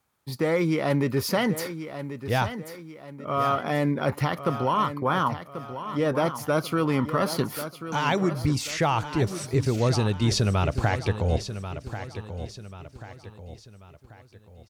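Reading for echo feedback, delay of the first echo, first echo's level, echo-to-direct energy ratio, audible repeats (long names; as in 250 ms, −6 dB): 42%, 1,088 ms, −11.0 dB, −10.0 dB, 4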